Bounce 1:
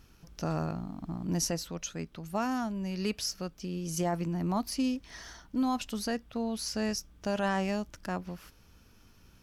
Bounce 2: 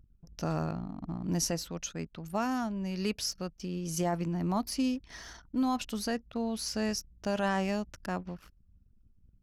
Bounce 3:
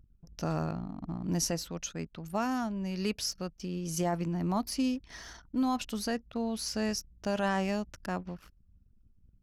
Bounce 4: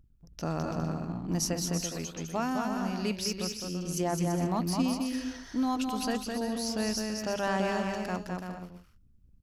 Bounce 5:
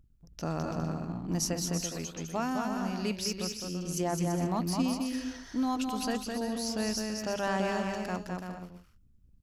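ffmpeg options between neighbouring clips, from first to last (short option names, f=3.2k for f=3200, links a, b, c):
-af "anlmdn=0.00251"
-af anull
-af "bandreject=f=50:t=h:w=6,bandreject=f=100:t=h:w=6,bandreject=f=150:t=h:w=6,bandreject=f=200:t=h:w=6,aecho=1:1:210|336|411.6|457|484.2:0.631|0.398|0.251|0.158|0.1"
-af "equalizer=f=7.2k:t=o:w=0.28:g=2,volume=-1dB"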